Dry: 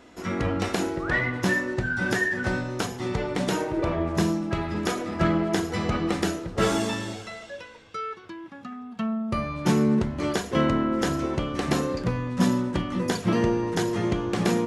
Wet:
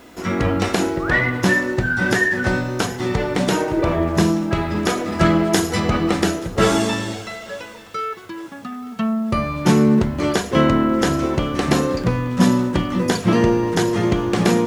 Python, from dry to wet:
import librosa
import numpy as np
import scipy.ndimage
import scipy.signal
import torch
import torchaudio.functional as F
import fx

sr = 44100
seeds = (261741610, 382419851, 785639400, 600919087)

p1 = fx.high_shelf(x, sr, hz=5300.0, db=10.0, at=(5.12, 5.8))
p2 = fx.quant_dither(p1, sr, seeds[0], bits=10, dither='none')
p3 = p2 + fx.echo_thinned(p2, sr, ms=880, feedback_pct=49, hz=400.0, wet_db=-21.0, dry=0)
y = F.gain(torch.from_numpy(p3), 7.0).numpy()